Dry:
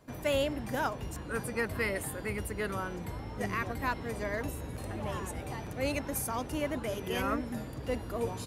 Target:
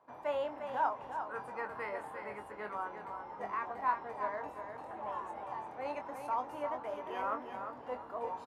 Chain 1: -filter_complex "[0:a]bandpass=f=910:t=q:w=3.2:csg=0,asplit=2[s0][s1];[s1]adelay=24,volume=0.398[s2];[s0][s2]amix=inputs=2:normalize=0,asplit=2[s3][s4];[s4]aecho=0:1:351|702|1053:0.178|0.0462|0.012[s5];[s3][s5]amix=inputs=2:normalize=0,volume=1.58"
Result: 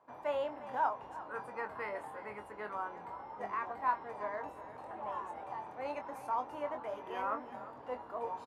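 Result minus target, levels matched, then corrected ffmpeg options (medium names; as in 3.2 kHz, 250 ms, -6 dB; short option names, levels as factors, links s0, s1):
echo-to-direct -7.5 dB
-filter_complex "[0:a]bandpass=f=910:t=q:w=3.2:csg=0,asplit=2[s0][s1];[s1]adelay=24,volume=0.398[s2];[s0][s2]amix=inputs=2:normalize=0,asplit=2[s3][s4];[s4]aecho=0:1:351|702|1053:0.422|0.11|0.0285[s5];[s3][s5]amix=inputs=2:normalize=0,volume=1.58"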